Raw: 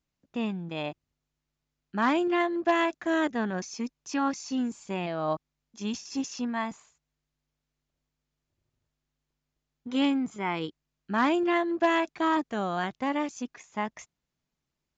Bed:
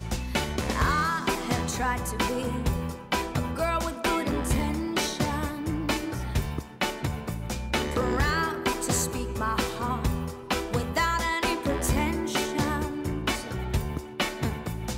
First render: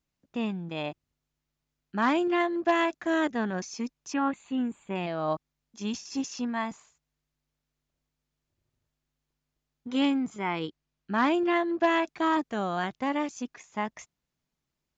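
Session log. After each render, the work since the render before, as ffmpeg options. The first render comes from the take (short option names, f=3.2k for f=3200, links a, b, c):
-filter_complex "[0:a]asplit=3[a][b][c];[a]afade=t=out:st=4.12:d=0.02[d];[b]asuperstop=centerf=5400:order=4:qfactor=1,afade=t=in:st=4.12:d=0.02,afade=t=out:st=4.94:d=0.02[e];[c]afade=t=in:st=4.94:d=0.02[f];[d][e][f]amix=inputs=3:normalize=0,asettb=1/sr,asplit=3[g][h][i];[g]atrim=end=10.474[j];[h]atrim=start=10.47:end=12.07,asetpts=PTS-STARTPTS,afade=t=in:d=0.004:c=qsin,afade=t=out:st=1.596:d=0.004:c=qsin,lowpass=6.8k[k];[i]atrim=start=12.066[l];[j][k]acrossfade=d=0.004:c1=hsin:c2=qsin[m];[m][l]acrossfade=d=0.004:c1=qsin:c2=hsin"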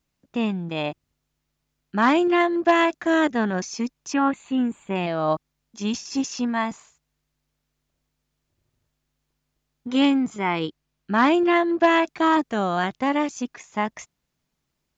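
-af "volume=6.5dB"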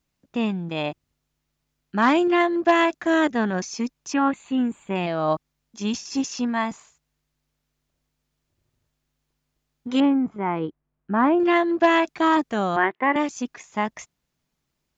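-filter_complex "[0:a]asettb=1/sr,asplit=3[a][b][c];[a]atrim=end=10.004[d];[b]atrim=start=10:end=11.4,asetpts=PTS-STARTPTS,afade=t=in:d=0.004:c=qsin,afade=t=out:st=1.396:d=0.004:c=qsin,lowpass=1.3k[e];[c]atrim=start=11.396[f];[d][e]acrossfade=d=0.004:c1=hsin:c2=qsin[g];[g][f]acrossfade=d=0.004:c1=qsin:c2=hsin,asettb=1/sr,asplit=3[h][i][j];[h]atrim=end=12.764[k];[i]atrim=start=12.76:end=13.16,asetpts=PTS-STARTPTS,afade=t=in:d=0.004:c=qsin,afade=t=out:st=0.396:d=0.004:c=qsin,highpass=320,equalizer=f=370:t=q:w=4:g=10,equalizer=f=1k:t=q:w=4:g=7,equalizer=f=1.9k:t=q:w=4:g=10,lowpass=f=2.6k:w=0.5412,lowpass=f=2.6k:w=1.3066[l];[j]atrim=start=13.156[m];[k][l]acrossfade=d=0.004:c1=hsin:c2=qsin[n];[n][m]acrossfade=d=0.004:c1=qsin:c2=hsin"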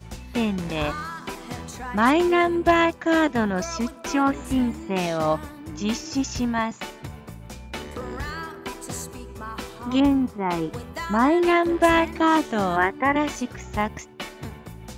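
-filter_complex "[1:a]volume=-7dB[a];[0:a][a]amix=inputs=2:normalize=0"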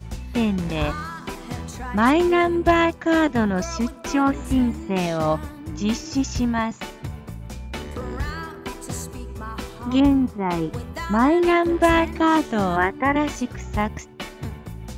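-af "lowshelf=f=180:g=7.5"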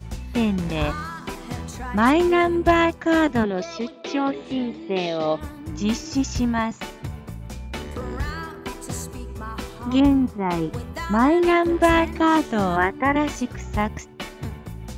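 -filter_complex "[0:a]asplit=3[a][b][c];[a]afade=t=out:st=3.43:d=0.02[d];[b]highpass=250,equalizer=f=250:t=q:w=4:g=-4,equalizer=f=420:t=q:w=4:g=7,equalizer=f=980:t=q:w=4:g=-7,equalizer=f=1.5k:t=q:w=4:g=-10,equalizer=f=3.7k:t=q:w=4:g=7,lowpass=f=4.9k:w=0.5412,lowpass=f=4.9k:w=1.3066,afade=t=in:st=3.43:d=0.02,afade=t=out:st=5.4:d=0.02[e];[c]afade=t=in:st=5.4:d=0.02[f];[d][e][f]amix=inputs=3:normalize=0"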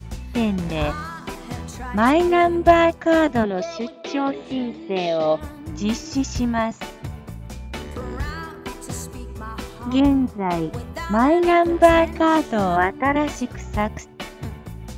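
-af "adynamicequalizer=threshold=0.0126:dfrequency=670:dqfactor=5.2:tfrequency=670:tqfactor=5.2:attack=5:release=100:ratio=0.375:range=3.5:mode=boostabove:tftype=bell"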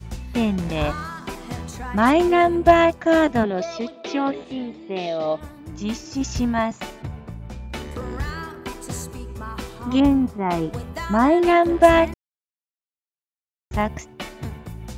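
-filter_complex "[0:a]asettb=1/sr,asplit=3[a][b][c];[a]atrim=end=7.024[d];[b]atrim=start=7.02:end=7.7,asetpts=PTS-STARTPTS,afade=t=in:d=0.004:c=qsin,afade=t=out:st=0.676:d=0.004:c=qsin,lowpass=f=2.6k:p=1[e];[c]atrim=start=7.696[f];[d][e]acrossfade=d=0.004:c1=hsin:c2=qsin[g];[g][f]acrossfade=d=0.004:c1=qsin:c2=hsin,asplit=5[h][i][j][k][l];[h]atrim=end=4.442[m];[i]atrim=start=4.438:end=6.212,asetpts=PTS-STARTPTS,volume=-4dB[n];[j]atrim=start=6.208:end=12.14,asetpts=PTS-STARTPTS,afade=t=out:st=5.928:d=0.004:c=hsin[o];[k]atrim=start=12.14:end=13.71,asetpts=PTS-STARTPTS,volume=0[p];[l]atrim=start=13.71,asetpts=PTS-STARTPTS,afade=t=in:d=0.004:c=hsin[q];[m][n]acrossfade=d=0.004:c1=hsin:c2=hsin[r];[o][p][q]concat=n=3:v=0:a=1[s];[r][s]acrossfade=d=0.004:c1=hsin:c2=hsin"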